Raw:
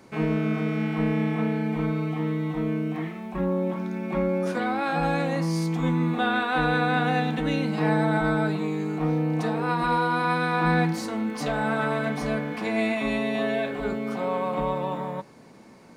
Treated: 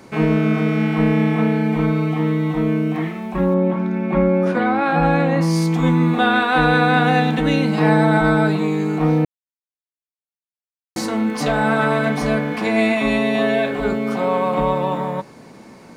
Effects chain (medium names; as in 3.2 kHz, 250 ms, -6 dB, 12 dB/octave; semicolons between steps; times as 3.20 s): 3.54–5.41 s: tone controls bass +2 dB, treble -14 dB; 9.25–10.96 s: mute; trim +8 dB